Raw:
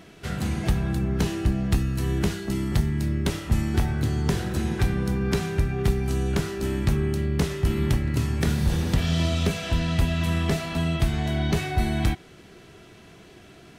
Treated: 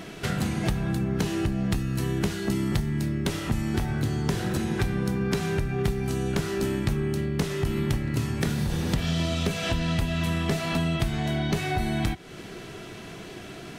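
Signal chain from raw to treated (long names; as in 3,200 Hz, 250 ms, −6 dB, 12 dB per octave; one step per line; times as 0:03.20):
downward compressor 3 to 1, threshold −33 dBFS, peak gain reduction 12.5 dB
parametric band 69 Hz −12 dB 0.4 octaves
level +8.5 dB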